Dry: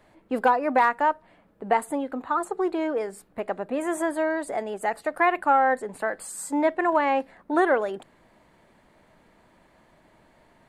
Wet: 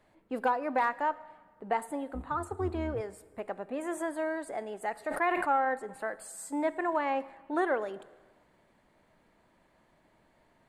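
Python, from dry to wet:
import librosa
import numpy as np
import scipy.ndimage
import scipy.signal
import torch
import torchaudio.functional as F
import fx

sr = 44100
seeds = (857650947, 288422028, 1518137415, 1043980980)

y = fx.octave_divider(x, sr, octaves=2, level_db=1.0, at=(2.14, 3.01))
y = fx.rev_plate(y, sr, seeds[0], rt60_s=1.4, hf_ratio=0.95, predelay_ms=0, drr_db=16.5)
y = fx.sustainer(y, sr, db_per_s=40.0, at=(4.93, 5.65))
y = y * librosa.db_to_amplitude(-8.0)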